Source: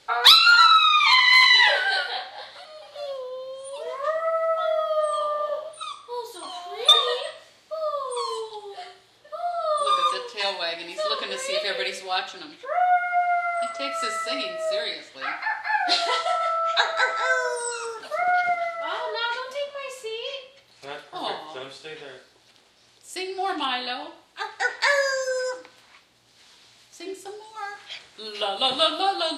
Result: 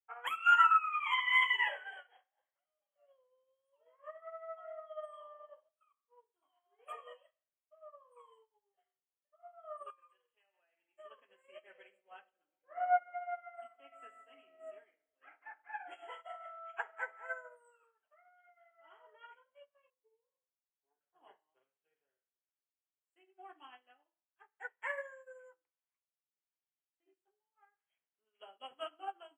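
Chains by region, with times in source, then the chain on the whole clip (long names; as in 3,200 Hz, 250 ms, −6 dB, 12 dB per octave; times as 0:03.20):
0:09.90–0:10.99: spectral tilt +2 dB per octave + notch filter 980 Hz, Q 9.1 + downward compressor 5 to 1, threshold −28 dBFS
0:11.50–0:16.10: double-tracking delay 25 ms −13.5 dB + delay with a low-pass on its return 138 ms, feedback 76%, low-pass 640 Hz, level −10 dB
0:17.83–0:18.71: meter weighting curve A + downward compressor 20 to 1, threshold −27 dBFS
0:19.90–0:21.01: low-pass filter 1,300 Hz 24 dB per octave + phaser with its sweep stopped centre 870 Hz, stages 8
whole clip: brick-wall band-stop 3,300–6,900 Hz; bass and treble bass −9 dB, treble −11 dB; expander for the loud parts 2.5 to 1, over −40 dBFS; level −7.5 dB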